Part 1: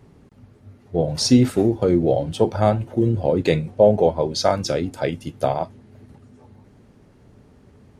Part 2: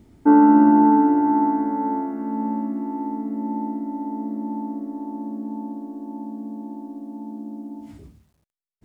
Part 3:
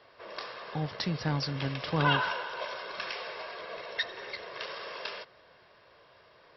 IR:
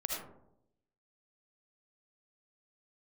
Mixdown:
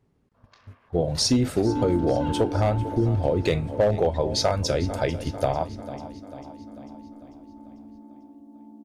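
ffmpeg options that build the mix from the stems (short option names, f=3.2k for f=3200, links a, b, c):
-filter_complex "[0:a]agate=range=-18dB:threshold=-42dB:ratio=16:detection=peak,asubboost=boost=6.5:cutoff=74,volume=1dB,asplit=2[a][b];[b]volume=-17.5dB[c];[1:a]adelay=1400,volume=-12.5dB[d];[2:a]afwtdn=0.00631,highpass=770,adelay=150,volume=-15.5dB[e];[c]aecho=0:1:445|890|1335|1780|2225|2670|3115|3560:1|0.55|0.303|0.166|0.0915|0.0503|0.0277|0.0152[f];[a][d][e][f]amix=inputs=4:normalize=0,volume=7.5dB,asoftclip=hard,volume=-7.5dB,acompressor=threshold=-20dB:ratio=2.5"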